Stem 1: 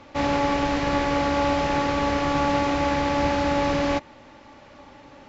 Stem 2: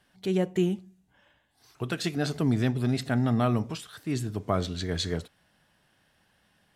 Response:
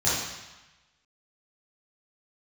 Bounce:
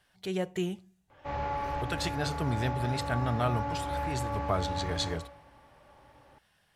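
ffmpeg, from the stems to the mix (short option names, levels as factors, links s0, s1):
-filter_complex "[0:a]lowpass=f=2800:p=1,highshelf=f=2000:g=-8.5,adelay=1100,volume=0.316,asplit=2[s0][s1];[s1]volume=0.158[s2];[1:a]volume=0.891,asplit=2[s3][s4];[s4]apad=whole_len=281557[s5];[s0][s5]sidechaincompress=threshold=0.02:ratio=8:attack=16:release=485[s6];[2:a]atrim=start_sample=2205[s7];[s2][s7]afir=irnorm=-1:irlink=0[s8];[s6][s3][s8]amix=inputs=3:normalize=0,equalizer=f=250:t=o:w=1.2:g=-10"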